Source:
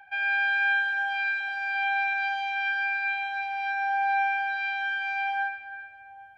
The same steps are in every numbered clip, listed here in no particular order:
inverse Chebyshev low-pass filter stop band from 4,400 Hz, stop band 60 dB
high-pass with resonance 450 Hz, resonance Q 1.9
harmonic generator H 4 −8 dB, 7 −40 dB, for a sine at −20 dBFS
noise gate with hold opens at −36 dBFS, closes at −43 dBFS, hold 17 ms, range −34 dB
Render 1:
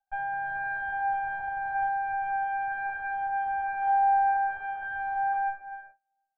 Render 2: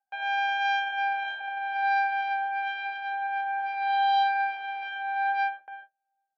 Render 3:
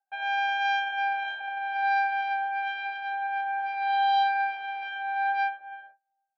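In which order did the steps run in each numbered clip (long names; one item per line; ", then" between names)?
high-pass with resonance, then harmonic generator, then noise gate with hold, then inverse Chebyshev low-pass filter
inverse Chebyshev low-pass filter, then harmonic generator, then noise gate with hold, then high-pass with resonance
noise gate with hold, then inverse Chebyshev low-pass filter, then harmonic generator, then high-pass with resonance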